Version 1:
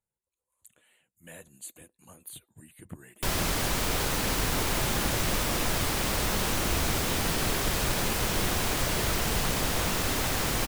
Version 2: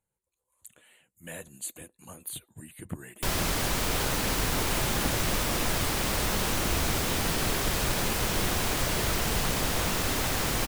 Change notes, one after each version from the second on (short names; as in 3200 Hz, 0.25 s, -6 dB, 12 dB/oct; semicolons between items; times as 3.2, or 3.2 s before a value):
speech +6.0 dB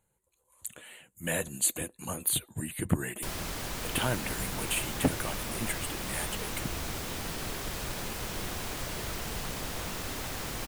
speech +10.0 dB; background -8.5 dB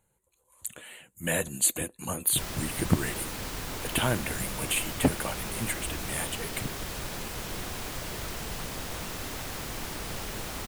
speech +3.0 dB; background: entry -0.85 s